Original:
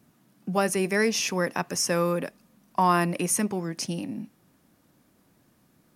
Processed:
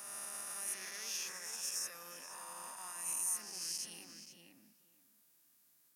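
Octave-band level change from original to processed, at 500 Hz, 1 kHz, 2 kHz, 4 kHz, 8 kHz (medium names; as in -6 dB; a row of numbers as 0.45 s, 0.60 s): -31.0 dB, -24.0 dB, -18.5 dB, -10.5 dB, -6.5 dB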